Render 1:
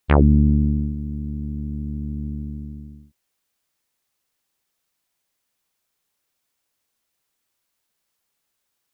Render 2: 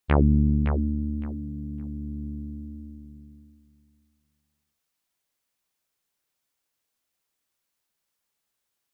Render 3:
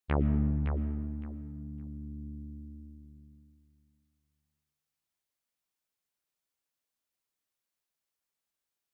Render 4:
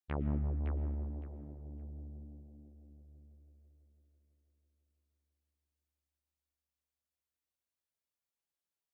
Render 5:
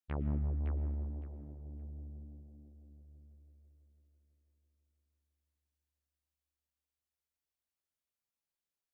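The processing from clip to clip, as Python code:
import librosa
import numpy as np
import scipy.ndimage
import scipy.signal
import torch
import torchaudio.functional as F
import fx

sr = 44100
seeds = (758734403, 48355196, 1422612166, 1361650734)

y1 = fx.echo_feedback(x, sr, ms=562, feedback_pct=19, wet_db=-8)
y1 = y1 * 10.0 ** (-5.0 / 20.0)
y2 = fx.rev_freeverb(y1, sr, rt60_s=2.0, hf_ratio=0.45, predelay_ms=80, drr_db=12.0)
y2 = y2 * 10.0 ** (-8.5 / 20.0)
y3 = fx.echo_bbd(y2, sr, ms=165, stages=1024, feedback_pct=81, wet_db=-5.5)
y3 = y3 * 10.0 ** (-8.5 / 20.0)
y4 = fx.low_shelf(y3, sr, hz=140.0, db=4.5)
y4 = y4 * 10.0 ** (-3.0 / 20.0)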